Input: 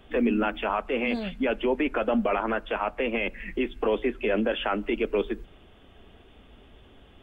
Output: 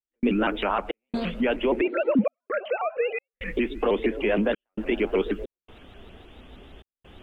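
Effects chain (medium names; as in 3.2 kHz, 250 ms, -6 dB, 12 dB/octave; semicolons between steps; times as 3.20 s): 1.81–3.34 s: formants replaced by sine waves; in parallel at -1.5 dB: compression, threshold -34 dBFS, peak gain reduction 15 dB; on the sum: repeats whose band climbs or falls 125 ms, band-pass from 280 Hz, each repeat 0.7 oct, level -11 dB; trance gate ".xxx.xxxxx" 66 bpm -60 dB; vibrato with a chosen wave saw up 6.4 Hz, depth 160 cents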